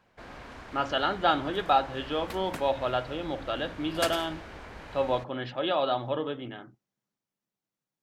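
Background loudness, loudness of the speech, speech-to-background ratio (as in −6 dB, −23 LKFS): −41.5 LKFS, −29.5 LKFS, 12.0 dB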